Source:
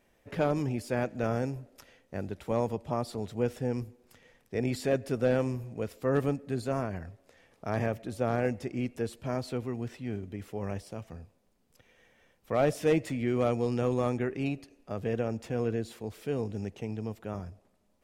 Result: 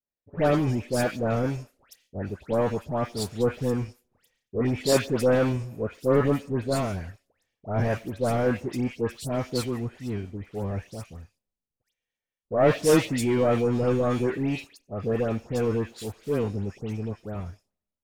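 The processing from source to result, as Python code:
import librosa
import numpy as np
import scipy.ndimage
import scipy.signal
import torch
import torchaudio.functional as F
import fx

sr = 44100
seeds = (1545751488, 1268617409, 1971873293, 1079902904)

y = fx.leveller(x, sr, passes=2)
y = fx.dispersion(y, sr, late='highs', ms=135.0, hz=1800.0)
y = fx.band_widen(y, sr, depth_pct=70)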